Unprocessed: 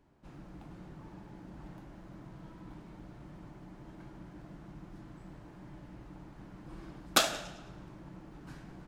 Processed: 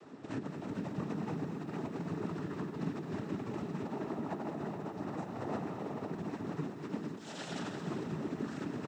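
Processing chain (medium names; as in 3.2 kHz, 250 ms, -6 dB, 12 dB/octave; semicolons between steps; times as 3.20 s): bass shelf 290 Hz +6 dB; comb 3.8 ms, depth 74%; 3.84–6.11 s: peaking EQ 710 Hz +10 dB 1.1 oct; compressor with a negative ratio -47 dBFS, ratio -1; noise-vocoded speech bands 12; delay 215 ms -10 dB; bit-crushed delay 445 ms, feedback 35%, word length 12-bit, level -12 dB; trim +8 dB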